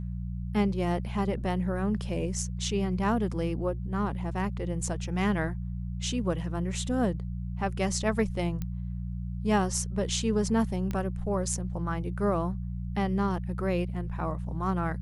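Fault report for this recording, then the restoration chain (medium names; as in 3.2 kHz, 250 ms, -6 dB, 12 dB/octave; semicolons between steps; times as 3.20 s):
hum 60 Hz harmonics 3 -34 dBFS
8.62 s: pop -21 dBFS
10.91 s: pop -20 dBFS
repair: de-click; de-hum 60 Hz, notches 3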